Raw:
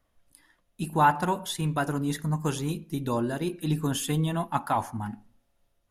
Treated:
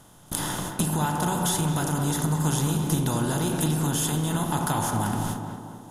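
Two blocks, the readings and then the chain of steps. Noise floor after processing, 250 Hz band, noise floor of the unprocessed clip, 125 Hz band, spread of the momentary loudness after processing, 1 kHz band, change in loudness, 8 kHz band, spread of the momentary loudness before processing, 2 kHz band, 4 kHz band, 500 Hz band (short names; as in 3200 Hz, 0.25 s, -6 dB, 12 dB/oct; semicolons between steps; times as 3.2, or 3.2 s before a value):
-51 dBFS, +3.5 dB, -72 dBFS, +5.0 dB, 6 LU, -1.0 dB, +2.5 dB, +11.0 dB, 11 LU, +0.5 dB, +5.0 dB, +0.5 dB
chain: per-bin compression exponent 0.4; gate with hold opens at -26 dBFS; tone controls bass +10 dB, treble +12 dB; in parallel at 0 dB: limiter -12 dBFS, peak gain reduction 8.5 dB; on the sum: compressor 10:1, threshold -20 dBFS, peak gain reduction 12.5 dB; on a send: tape echo 0.221 s, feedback 63%, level -4 dB, low-pass 1400 Hz; on the sum: gain -2.5 dB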